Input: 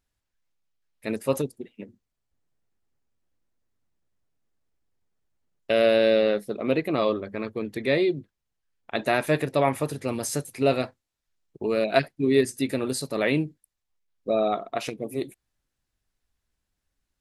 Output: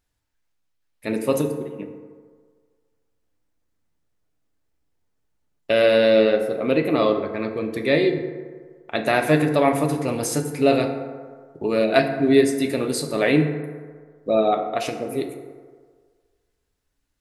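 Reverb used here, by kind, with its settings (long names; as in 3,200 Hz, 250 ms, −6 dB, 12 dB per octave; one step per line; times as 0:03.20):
feedback delay network reverb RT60 1.7 s, low-frequency decay 0.8×, high-frequency decay 0.4×, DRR 4.5 dB
level +3 dB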